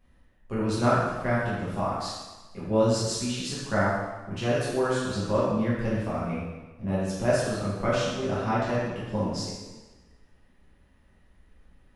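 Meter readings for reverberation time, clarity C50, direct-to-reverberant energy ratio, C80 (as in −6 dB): 1.2 s, −1.0 dB, −9.0 dB, 2.0 dB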